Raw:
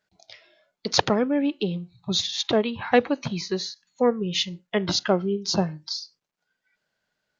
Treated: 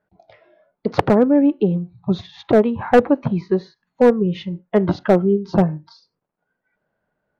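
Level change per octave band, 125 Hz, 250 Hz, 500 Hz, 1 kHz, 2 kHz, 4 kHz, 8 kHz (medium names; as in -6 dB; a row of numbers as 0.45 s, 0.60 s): +9.0 dB, +8.5 dB, +8.0 dB, +5.0 dB, +1.5 dB, -13.0 dB, no reading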